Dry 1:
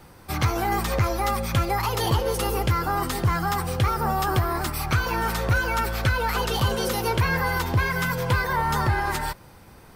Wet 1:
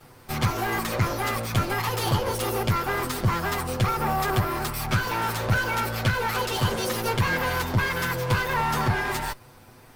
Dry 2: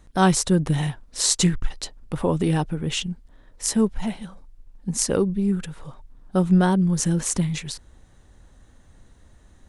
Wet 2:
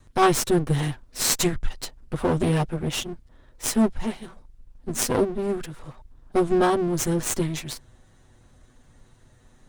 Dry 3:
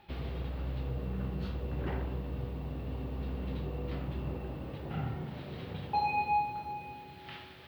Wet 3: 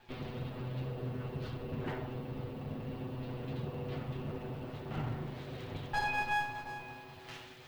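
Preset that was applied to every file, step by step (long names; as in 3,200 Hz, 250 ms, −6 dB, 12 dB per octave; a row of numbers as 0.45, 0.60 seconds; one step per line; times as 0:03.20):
lower of the sound and its delayed copy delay 8 ms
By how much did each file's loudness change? −1.0, −1.5, −2.5 LU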